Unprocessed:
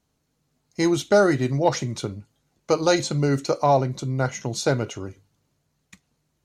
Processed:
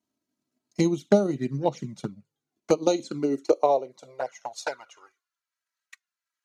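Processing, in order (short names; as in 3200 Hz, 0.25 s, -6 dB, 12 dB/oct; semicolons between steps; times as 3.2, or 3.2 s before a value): transient shaper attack +9 dB, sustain -5 dB; high-pass sweep 180 Hz -> 1500 Hz, 2.53–5.43; envelope flanger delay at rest 3.1 ms, full sweep at -11.5 dBFS; gain -8.5 dB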